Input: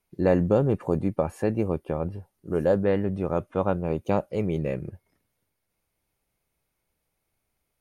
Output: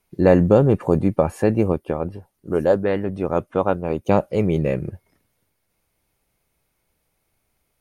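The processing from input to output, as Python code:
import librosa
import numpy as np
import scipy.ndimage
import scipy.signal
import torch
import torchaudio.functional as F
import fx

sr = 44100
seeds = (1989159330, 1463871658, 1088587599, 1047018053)

y = fx.hpss(x, sr, part='harmonic', gain_db=-8, at=(1.72, 4.11))
y = y * librosa.db_to_amplitude(7.0)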